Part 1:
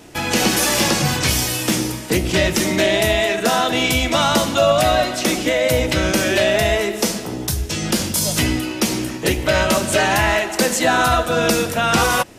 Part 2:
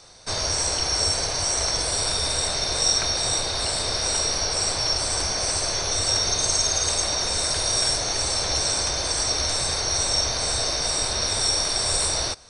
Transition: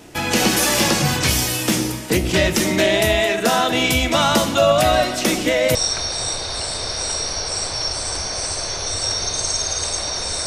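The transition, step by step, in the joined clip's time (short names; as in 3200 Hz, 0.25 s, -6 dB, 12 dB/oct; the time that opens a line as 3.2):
part 1
4.93 add part 2 from 1.98 s 0.82 s -13 dB
5.75 switch to part 2 from 2.8 s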